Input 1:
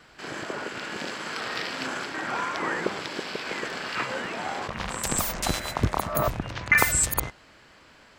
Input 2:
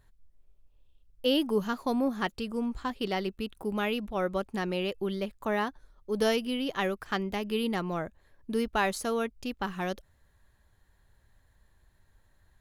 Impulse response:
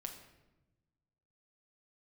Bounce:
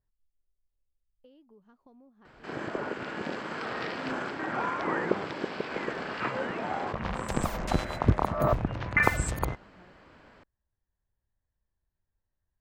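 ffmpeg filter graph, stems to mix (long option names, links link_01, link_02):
-filter_complex "[0:a]adelay=2250,volume=2dB[link_01];[1:a]acompressor=threshold=-36dB:ratio=6,volume=-18.5dB[link_02];[link_01][link_02]amix=inputs=2:normalize=0,lowpass=frequency=1000:poles=1"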